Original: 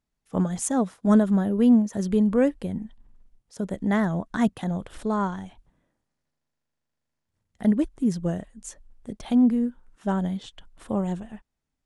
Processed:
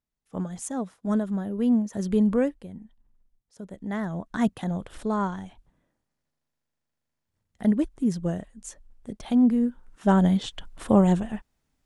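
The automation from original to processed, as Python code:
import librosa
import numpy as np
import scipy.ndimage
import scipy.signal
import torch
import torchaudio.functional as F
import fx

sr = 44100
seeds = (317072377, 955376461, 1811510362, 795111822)

y = fx.gain(x, sr, db=fx.line((1.43, -7.0), (2.31, 0.5), (2.64, -10.5), (3.71, -10.5), (4.47, -1.0), (9.38, -1.0), (10.36, 8.0)))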